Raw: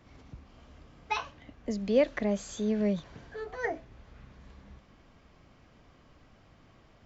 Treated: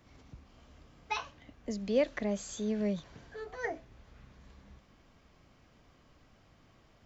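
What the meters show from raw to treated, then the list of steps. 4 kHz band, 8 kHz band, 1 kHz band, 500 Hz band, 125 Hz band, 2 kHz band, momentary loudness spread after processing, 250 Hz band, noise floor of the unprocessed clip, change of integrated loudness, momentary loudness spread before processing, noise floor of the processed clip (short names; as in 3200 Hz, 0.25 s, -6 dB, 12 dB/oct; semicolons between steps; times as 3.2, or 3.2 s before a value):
-1.5 dB, n/a, -4.0 dB, -4.0 dB, -4.0 dB, -3.0 dB, 16 LU, -4.0 dB, -60 dBFS, -4.0 dB, 16 LU, -64 dBFS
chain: high shelf 5200 Hz +7 dB; gain -4 dB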